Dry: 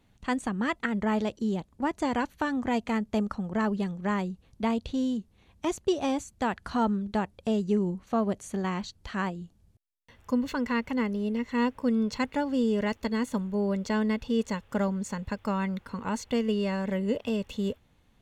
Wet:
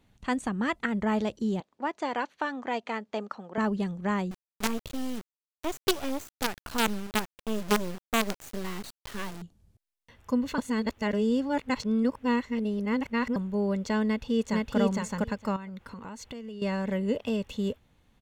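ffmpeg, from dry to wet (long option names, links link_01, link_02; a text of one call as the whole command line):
ffmpeg -i in.wav -filter_complex "[0:a]asettb=1/sr,asplit=3[link_01][link_02][link_03];[link_01]atrim=end=1.604[link_04];[link_02]atrim=start=1.6:end=3.58,asetpts=PTS-STARTPTS,afade=type=in:duration=0.004:curve=qsin,afade=type=out:start_time=1.976:duration=0.004:curve=qsin,highpass=410,lowpass=5200[link_05];[link_03]atrim=start=3.576[link_06];[link_04][link_05]acrossfade=duration=0.004:curve1=hsin:curve2=qsin[link_07];[link_07][link_06]acrossfade=duration=0.004:curve1=qsin:curve2=hsin,asettb=1/sr,asplit=3[link_08][link_09][link_10];[link_08]atrim=end=4.314[link_11];[link_09]atrim=start=4.31:end=9.42,asetpts=PTS-STARTPTS,afade=type=in:duration=0.004:curve=qsin,afade=type=out:start_time=5.106:duration=0.004:curve=qsin,acrusher=bits=4:dc=4:mix=0:aa=0.000001[link_12];[link_10]atrim=start=9.416[link_13];[link_11][link_12]acrossfade=duration=0.004:curve1=hsin:curve2=qsin[link_14];[link_14][link_13]acrossfade=duration=0.004:curve1=qsin:curve2=hsin,asplit=2[link_15][link_16];[link_16]afade=type=in:start_time=14.06:duration=0.01,afade=type=out:start_time=14.78:duration=0.01,aecho=0:1:460|920:0.944061|0.0944061[link_17];[link_15][link_17]amix=inputs=2:normalize=0,asettb=1/sr,asplit=3[link_18][link_19][link_20];[link_18]atrim=end=15.564[link_21];[link_19]atrim=start=15.56:end=16.62,asetpts=PTS-STARTPTS,afade=type=in:duration=0.004:curve=qsin,afade=type=out:start_time=1.056:duration=0.004:curve=qsin,acompressor=threshold=-37dB:ratio=8:attack=3.2:release=140:knee=1:detection=peak[link_22];[link_20]atrim=start=16.616[link_23];[link_21][link_22]acrossfade=duration=0.004:curve1=hsin:curve2=qsin[link_24];[link_24][link_23]acrossfade=duration=0.004:curve1=qsin:curve2=hsin,asplit=3[link_25][link_26][link_27];[link_25]atrim=end=10.582[link_28];[link_26]atrim=start=10.578:end=13.362,asetpts=PTS-STARTPTS,areverse[link_29];[link_27]atrim=start=13.358[link_30];[link_28][link_29]acrossfade=duration=0.004:curve1=hsin:curve2=hsin[link_31];[link_31][link_30]acrossfade=duration=0.004:curve1=hsin:curve2=hsin" out.wav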